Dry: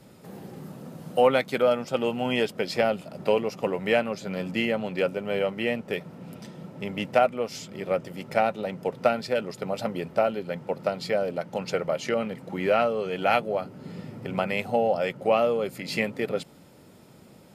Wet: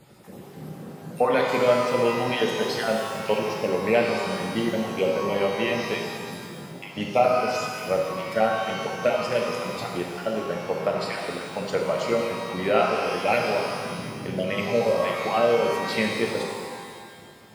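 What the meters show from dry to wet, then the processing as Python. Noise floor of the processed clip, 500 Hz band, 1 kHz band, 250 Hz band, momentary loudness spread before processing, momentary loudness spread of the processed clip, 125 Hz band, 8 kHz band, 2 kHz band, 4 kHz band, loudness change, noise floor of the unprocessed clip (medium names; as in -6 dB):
-44 dBFS, +1.5 dB, +2.5 dB, +2.0 dB, 15 LU, 14 LU, +2.0 dB, +6.5 dB, +3.0 dB, +4.0 dB, +2.0 dB, -52 dBFS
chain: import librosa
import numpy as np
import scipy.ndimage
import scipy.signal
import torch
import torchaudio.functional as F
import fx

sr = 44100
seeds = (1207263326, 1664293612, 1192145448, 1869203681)

y = fx.spec_dropout(x, sr, seeds[0], share_pct=30)
y = fx.rev_shimmer(y, sr, seeds[1], rt60_s=1.9, semitones=12, shimmer_db=-8, drr_db=0.0)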